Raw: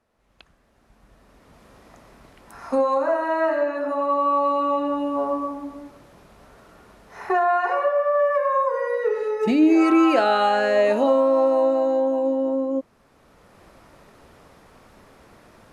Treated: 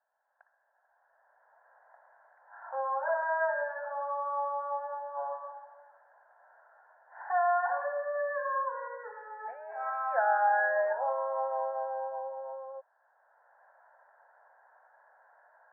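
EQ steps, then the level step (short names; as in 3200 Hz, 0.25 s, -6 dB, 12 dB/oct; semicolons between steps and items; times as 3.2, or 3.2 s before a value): inverse Chebyshev high-pass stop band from 310 Hz, stop band 50 dB; rippled Chebyshev low-pass 1700 Hz, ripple 3 dB; fixed phaser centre 1200 Hz, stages 6; +2.0 dB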